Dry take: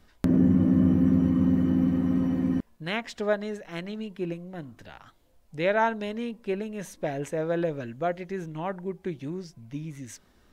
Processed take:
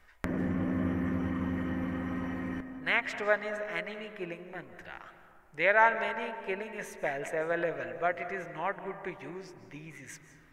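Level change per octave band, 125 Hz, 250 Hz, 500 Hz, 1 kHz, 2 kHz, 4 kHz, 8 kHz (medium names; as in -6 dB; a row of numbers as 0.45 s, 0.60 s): -10.5 dB, -11.0 dB, -3.0 dB, +1.0 dB, +5.5 dB, -2.5 dB, -4.5 dB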